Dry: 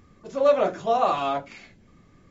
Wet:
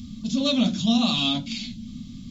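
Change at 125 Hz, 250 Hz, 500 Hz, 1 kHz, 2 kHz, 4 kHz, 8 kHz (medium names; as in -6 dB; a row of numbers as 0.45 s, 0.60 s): +13.0 dB, +15.0 dB, -12.0 dB, -11.0 dB, +2.5 dB, +17.0 dB, no reading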